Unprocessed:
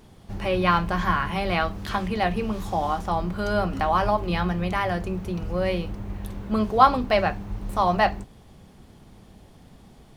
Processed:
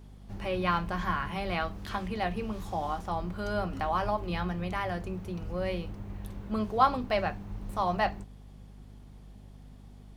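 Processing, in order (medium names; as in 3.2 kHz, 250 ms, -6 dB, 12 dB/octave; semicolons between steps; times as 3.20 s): hum 50 Hz, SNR 17 dB; trim -7.5 dB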